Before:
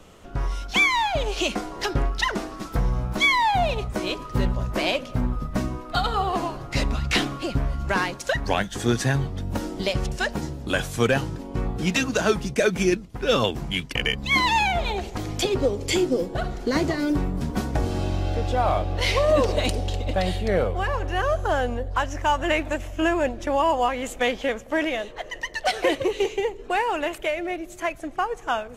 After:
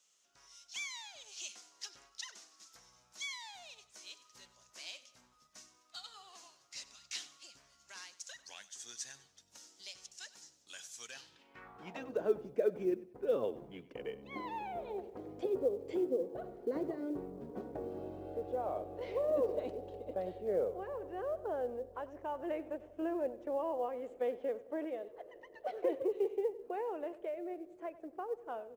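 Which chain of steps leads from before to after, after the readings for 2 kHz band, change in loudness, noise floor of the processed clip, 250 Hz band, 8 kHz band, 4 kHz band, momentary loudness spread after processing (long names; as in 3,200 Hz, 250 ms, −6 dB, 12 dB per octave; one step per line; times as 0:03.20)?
−26.0 dB, −15.0 dB, −69 dBFS, −16.5 dB, −13.5 dB, −21.0 dB, 19 LU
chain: band-pass filter sweep 6,300 Hz → 450 Hz, 0:11.09–0:12.16
log-companded quantiser 8 bits
repeating echo 96 ms, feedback 32%, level −18 dB
level −8 dB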